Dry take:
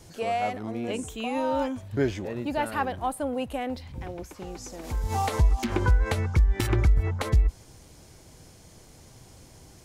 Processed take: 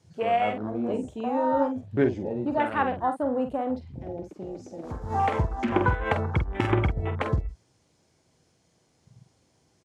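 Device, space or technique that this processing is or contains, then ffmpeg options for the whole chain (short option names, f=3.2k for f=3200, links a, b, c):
over-cleaned archive recording: -filter_complex "[0:a]asettb=1/sr,asplit=3[a][b][c];[a]atrim=end=5.724[d];[b]atrim=start=5.72:end=7.15,asetpts=PTS-STARTPTS,afade=t=in:d=0.004:c=qsin,afade=t=out:st=1.426:d=0.004:c=qsin,equalizer=f=820:t=o:w=0.95:g=5[e];[c]atrim=start=7.146[f];[d][e]acrossfade=d=0.004:c1=hsin:c2=qsin[g];[g][f]acrossfade=d=0.004:c1=qsin:c2=hsin,highpass=110,lowpass=7.6k,afwtdn=0.0158,asplit=2[h][i];[i]adelay=47,volume=-8dB[j];[h][j]amix=inputs=2:normalize=0,volume=2.5dB"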